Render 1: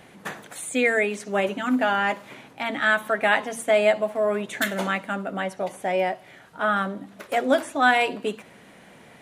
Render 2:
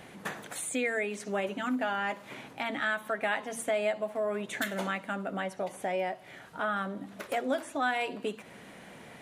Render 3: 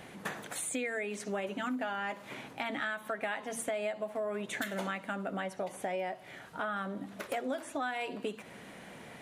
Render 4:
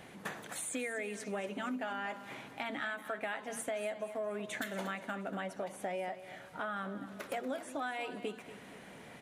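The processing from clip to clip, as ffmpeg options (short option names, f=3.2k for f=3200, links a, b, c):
-af "acompressor=threshold=-35dB:ratio=2"
-af "acompressor=threshold=-32dB:ratio=4"
-af "aecho=1:1:237|474|711|948:0.211|0.093|0.0409|0.018,volume=-3dB"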